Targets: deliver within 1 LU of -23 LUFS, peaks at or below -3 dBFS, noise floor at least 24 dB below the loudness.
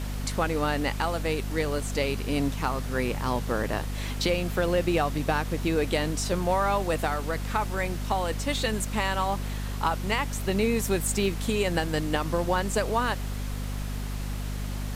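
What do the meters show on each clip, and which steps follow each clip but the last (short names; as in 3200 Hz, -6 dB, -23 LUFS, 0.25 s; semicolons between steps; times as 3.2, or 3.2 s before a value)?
hum 50 Hz; harmonics up to 250 Hz; hum level -29 dBFS; noise floor -32 dBFS; noise floor target -52 dBFS; loudness -28.0 LUFS; peak -12.0 dBFS; loudness target -23.0 LUFS
-> notches 50/100/150/200/250 Hz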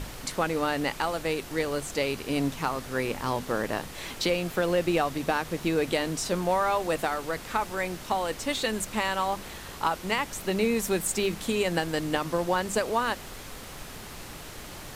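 hum none; noise floor -42 dBFS; noise floor target -53 dBFS
-> noise print and reduce 11 dB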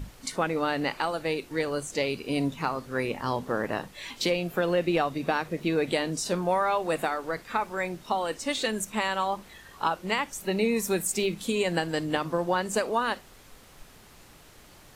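noise floor -53 dBFS; loudness -28.5 LUFS; peak -13.0 dBFS; loudness target -23.0 LUFS
-> gain +5.5 dB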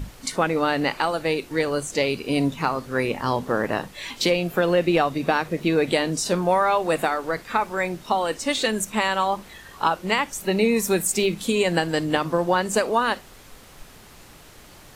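loudness -23.0 LUFS; peak -7.5 dBFS; noise floor -47 dBFS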